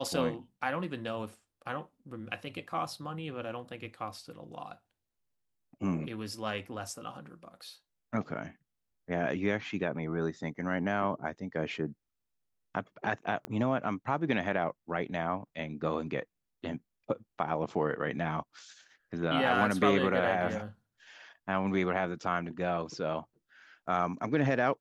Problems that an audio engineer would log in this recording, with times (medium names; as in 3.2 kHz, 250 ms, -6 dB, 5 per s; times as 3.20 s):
13.45 s: pop -22 dBFS